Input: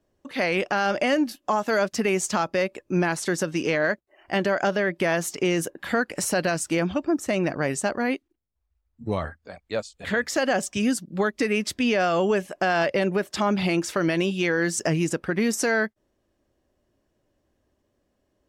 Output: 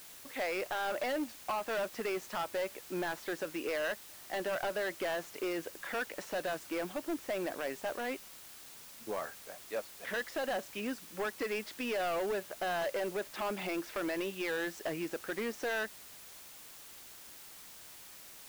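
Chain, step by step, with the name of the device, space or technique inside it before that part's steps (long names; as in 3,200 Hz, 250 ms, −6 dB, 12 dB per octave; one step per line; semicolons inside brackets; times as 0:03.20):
aircraft radio (band-pass filter 390–2,600 Hz; hard clipping −23.5 dBFS, distortion −9 dB; white noise bed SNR 14 dB)
level −7 dB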